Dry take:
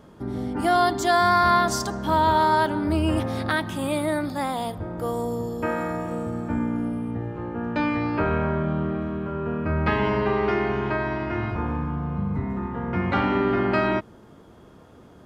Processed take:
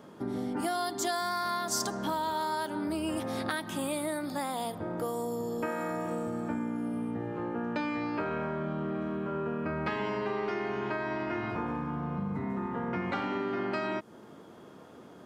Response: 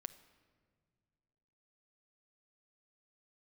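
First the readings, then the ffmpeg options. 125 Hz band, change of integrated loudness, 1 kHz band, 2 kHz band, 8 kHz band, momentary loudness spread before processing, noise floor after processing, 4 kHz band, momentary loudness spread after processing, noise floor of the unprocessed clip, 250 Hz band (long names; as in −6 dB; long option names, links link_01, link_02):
−12.0 dB, −9.0 dB, −10.5 dB, −9.0 dB, −1.0 dB, 10 LU, −51 dBFS, −6.5 dB, 4 LU, −49 dBFS, −7.5 dB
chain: -filter_complex "[0:a]highpass=180,acrossover=split=5200[link_01][link_02];[link_01]acompressor=threshold=-30dB:ratio=6[link_03];[link_03][link_02]amix=inputs=2:normalize=0"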